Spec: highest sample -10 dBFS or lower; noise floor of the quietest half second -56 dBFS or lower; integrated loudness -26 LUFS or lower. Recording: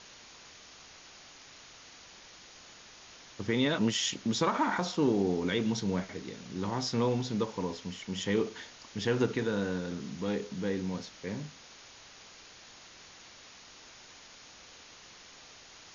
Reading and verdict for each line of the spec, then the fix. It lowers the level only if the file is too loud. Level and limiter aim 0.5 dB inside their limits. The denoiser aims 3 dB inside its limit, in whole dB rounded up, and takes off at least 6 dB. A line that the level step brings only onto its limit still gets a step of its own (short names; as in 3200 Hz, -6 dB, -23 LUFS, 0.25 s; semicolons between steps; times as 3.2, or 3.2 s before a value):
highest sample -15.5 dBFS: OK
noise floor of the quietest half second -53 dBFS: fail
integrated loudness -32.0 LUFS: OK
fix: denoiser 6 dB, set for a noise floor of -53 dBFS